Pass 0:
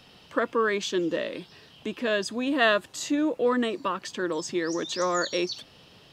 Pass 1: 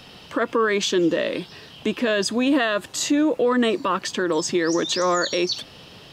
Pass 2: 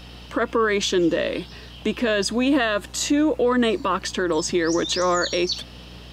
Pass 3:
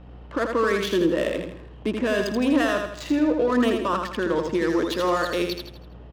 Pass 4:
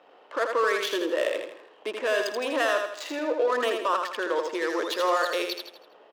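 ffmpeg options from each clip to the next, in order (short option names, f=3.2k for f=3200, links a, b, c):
-af "alimiter=limit=-21.5dB:level=0:latency=1:release=67,volume=9dB"
-af "aeval=exprs='val(0)+0.00794*(sin(2*PI*60*n/s)+sin(2*PI*2*60*n/s)/2+sin(2*PI*3*60*n/s)/3+sin(2*PI*4*60*n/s)/4+sin(2*PI*5*60*n/s)/5)':c=same"
-filter_complex "[0:a]highshelf=f=3.5k:g=-7,adynamicsmooth=sensitivity=4:basefreq=1k,asplit=2[a][b];[b]aecho=0:1:81|162|243|324|405:0.562|0.231|0.0945|0.0388|0.0159[c];[a][c]amix=inputs=2:normalize=0,volume=-2dB"
-af "highpass=f=440:w=0.5412,highpass=f=440:w=1.3066"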